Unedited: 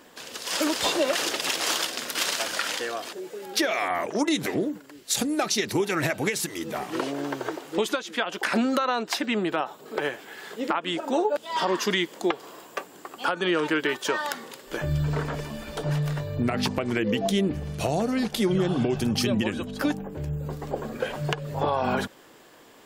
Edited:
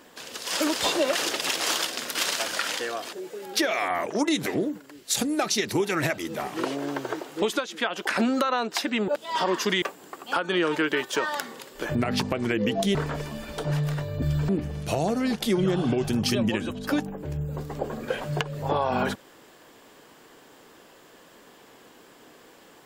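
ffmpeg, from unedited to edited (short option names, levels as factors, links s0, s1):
-filter_complex "[0:a]asplit=8[s0][s1][s2][s3][s4][s5][s6][s7];[s0]atrim=end=6.182[s8];[s1]atrim=start=6.538:end=9.442[s9];[s2]atrim=start=11.288:end=12.032[s10];[s3]atrim=start=12.738:end=14.872[s11];[s4]atrim=start=16.408:end=17.412[s12];[s5]atrim=start=15.138:end=16.412[s13];[s6]atrim=start=14.868:end=15.142[s14];[s7]atrim=start=17.408[s15];[s8][s9]acrossfade=d=0.004:c1=hsin:c2=hsin[s16];[s16][s10]acrossfade=d=0.004:c1=hsin:c2=hsin[s17];[s17][s11]acrossfade=d=0.004:c1=hsin:c2=hsin[s18];[s18][s12]acrossfade=d=0.004:c1=hsin:c2=hsin[s19];[s19][s13]acrossfade=d=0.004:c1=hsin:c2=hsin[s20];[s20][s14]acrossfade=d=0.004:c1=hsin:c2=hsin[s21];[s21][s15]acrossfade=d=0.004:c1=hsin:c2=hsin"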